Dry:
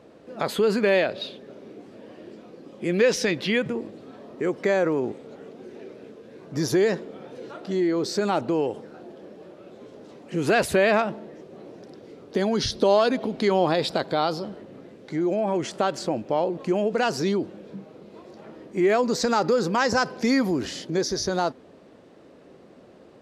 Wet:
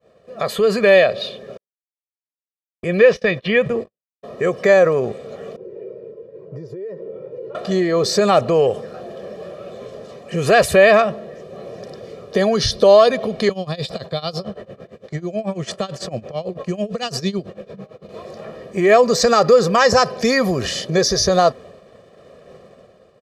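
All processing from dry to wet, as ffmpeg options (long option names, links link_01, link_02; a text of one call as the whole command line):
ffmpeg -i in.wav -filter_complex "[0:a]asettb=1/sr,asplit=3[link_01][link_02][link_03];[link_01]atrim=end=1.574[link_04];[link_02]atrim=start=1.57:end=4.23,asetpts=PTS-STARTPTS,afade=type=in:duration=0.004:curve=qsin,afade=type=out:start_time=2.656:duration=0.004:curve=qsin,acrossover=split=3600[link_05][link_06];[link_06]acompressor=threshold=-48dB:ratio=4:attack=1:release=60[link_07];[link_05][link_07]amix=inputs=2:normalize=0,agate=range=-57dB:threshold=-34dB:ratio=16:release=100:detection=peak,highshelf=frequency=5400:gain=-5[link_08];[link_03]atrim=start=4.226[link_09];[link_04][link_08]acrossfade=duration=0.004:curve1=hsin:curve2=qsin[link_10];[link_10][link_09]acrossfade=duration=0.004:curve1=qsin:curve2=hsin,asettb=1/sr,asplit=3[link_11][link_12][link_13];[link_11]atrim=end=5.564[link_14];[link_12]atrim=start=5.56:end=7.55,asetpts=PTS-STARTPTS,afade=type=in:duration=0.004:curve=qsin,afade=type=out:start_time=1.986:duration=0.004:curve=qsin,aecho=1:1:2.1:0.9,atrim=end_sample=87759,acompressor=threshold=-31dB:ratio=16:attack=3.2:release=140:knee=1:detection=peak,bandpass=frequency=270:width_type=q:width=1.8[link_15];[link_13]atrim=start=7.546[link_16];[link_14][link_15]acrossfade=duration=0.004:curve1=hsin:curve2=qsin[link_17];[link_17][link_16]acrossfade=duration=0.004:curve1=qsin:curve2=hsin,asettb=1/sr,asplit=3[link_18][link_19][link_20];[link_18]atrim=end=13.494[link_21];[link_19]atrim=start=13.49:end=18.09,asetpts=PTS-STARTPTS,afade=type=in:duration=0.004:curve=qsin,afade=type=out:start_time=4.596:duration=0.004:curve=qsin,highshelf=frequency=6200:gain=-6,acrossover=split=250|3000[link_22][link_23][link_24];[link_23]acompressor=threshold=-34dB:ratio=5:attack=3.2:release=140:knee=2.83:detection=peak[link_25];[link_22][link_25][link_24]amix=inputs=3:normalize=0,tremolo=f=9:d=0.89[link_26];[link_20]atrim=start=18.086[link_27];[link_21][link_26]acrossfade=duration=0.004:curve1=hsin:curve2=qsin[link_28];[link_28][link_27]acrossfade=duration=0.004:curve1=qsin:curve2=hsin,agate=range=-33dB:threshold=-45dB:ratio=3:detection=peak,aecho=1:1:1.7:0.79,dynaudnorm=framelen=130:gausssize=9:maxgain=10dB" out.wav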